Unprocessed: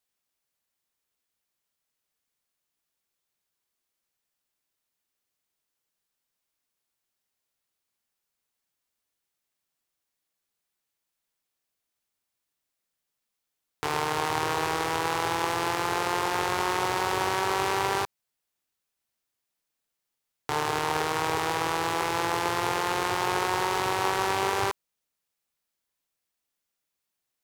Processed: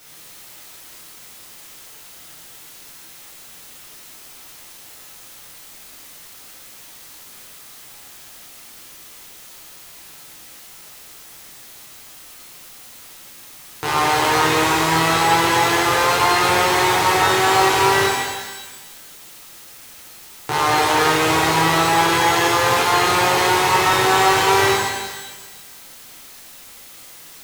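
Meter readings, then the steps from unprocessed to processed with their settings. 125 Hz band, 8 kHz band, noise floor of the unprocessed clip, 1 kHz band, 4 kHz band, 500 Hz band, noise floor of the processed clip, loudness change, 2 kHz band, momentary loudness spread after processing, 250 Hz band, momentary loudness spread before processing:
+11.0 dB, +13.0 dB, -84 dBFS, +11.0 dB, +13.0 dB, +10.5 dB, -42 dBFS, +11.0 dB, +12.5 dB, 11 LU, +11.5 dB, 3 LU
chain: added noise white -52 dBFS; pitch-shifted reverb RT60 1.2 s, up +12 st, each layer -8 dB, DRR -6.5 dB; trim +3 dB

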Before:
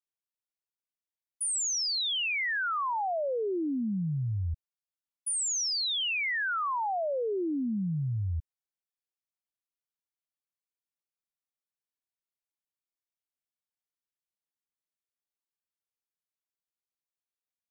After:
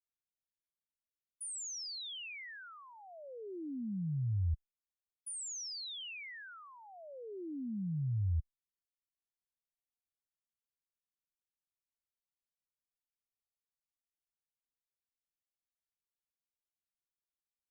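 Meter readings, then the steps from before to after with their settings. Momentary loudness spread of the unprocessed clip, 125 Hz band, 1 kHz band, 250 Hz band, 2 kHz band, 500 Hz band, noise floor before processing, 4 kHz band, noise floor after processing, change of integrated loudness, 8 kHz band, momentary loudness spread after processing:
7 LU, -3.0 dB, -23.5 dB, -9.0 dB, -17.5 dB, -16.5 dB, under -85 dBFS, -13.5 dB, under -85 dBFS, -10.0 dB, -12.0 dB, 17 LU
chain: amplifier tone stack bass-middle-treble 10-0-1; trim +8.5 dB

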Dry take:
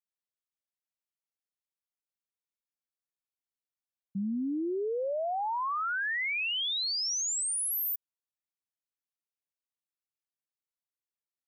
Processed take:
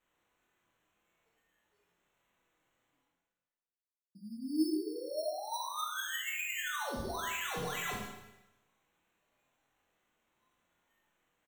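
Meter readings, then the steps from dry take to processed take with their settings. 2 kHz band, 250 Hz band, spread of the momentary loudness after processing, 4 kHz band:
-4.5 dB, -2.0 dB, 10 LU, -9.5 dB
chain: high-pass 210 Hz; spectral noise reduction 28 dB; peaking EQ 320 Hz +7 dB 0.48 oct; hum notches 50/100/150/200/250/300/350 Hz; reverse; upward compressor, threshold -34 dBFS; reverse; feedback comb 310 Hz, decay 0.17 s, harmonics all, mix 90%; sample-and-hold 9×; doubling 23 ms -7 dB; Schroeder reverb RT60 0.98 s, combs from 31 ms, DRR -1 dB

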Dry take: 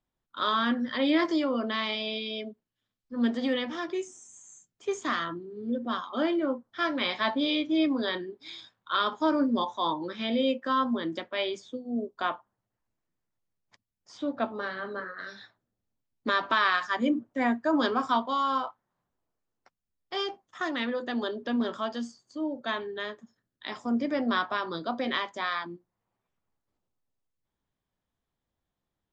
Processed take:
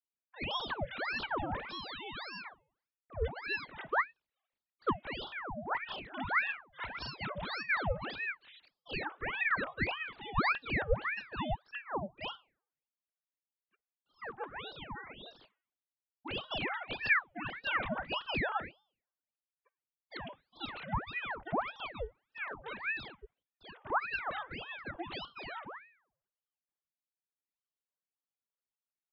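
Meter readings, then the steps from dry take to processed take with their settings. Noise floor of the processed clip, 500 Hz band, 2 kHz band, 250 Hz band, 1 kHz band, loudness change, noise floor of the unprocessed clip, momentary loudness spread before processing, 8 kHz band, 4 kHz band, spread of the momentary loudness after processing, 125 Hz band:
under -85 dBFS, -10.0 dB, -1.5 dB, -17.0 dB, -7.5 dB, -7.0 dB, under -85 dBFS, 12 LU, no reading, -9.0 dB, 14 LU, +5.5 dB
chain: formants replaced by sine waves; de-hum 337.8 Hz, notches 9; ring modulator with a swept carrier 1.2 kHz, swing 85%, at 1.7 Hz; trim -5 dB

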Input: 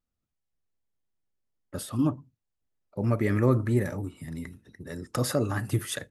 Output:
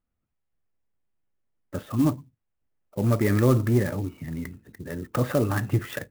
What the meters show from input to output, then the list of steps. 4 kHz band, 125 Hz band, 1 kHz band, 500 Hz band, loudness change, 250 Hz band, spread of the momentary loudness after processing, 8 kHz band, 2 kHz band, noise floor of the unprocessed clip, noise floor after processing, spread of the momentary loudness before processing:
-3.0 dB, +3.5 dB, +3.0 dB, +3.0 dB, +3.0 dB, +3.5 dB, 17 LU, -3.5 dB, +3.0 dB, -83 dBFS, -79 dBFS, 18 LU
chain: low-pass 2.9 kHz 24 dB/octave; in parallel at -4 dB: saturation -20.5 dBFS, distortion -12 dB; on the sum: sampling jitter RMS 0.037 ms

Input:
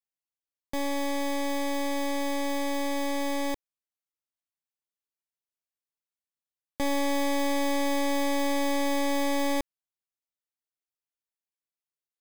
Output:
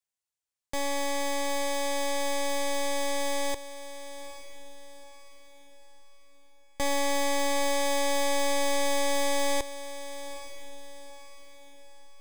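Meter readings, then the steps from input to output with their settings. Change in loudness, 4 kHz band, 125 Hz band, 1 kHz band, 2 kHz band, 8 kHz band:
-0.5 dB, +3.5 dB, no reading, +1.0 dB, +1.5 dB, +6.0 dB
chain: ten-band graphic EQ 250 Hz -9 dB, 8 kHz +7 dB, 16 kHz -4 dB; on a send: echo that smears into a reverb 858 ms, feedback 42%, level -13 dB; on the sum: trim +1.5 dB

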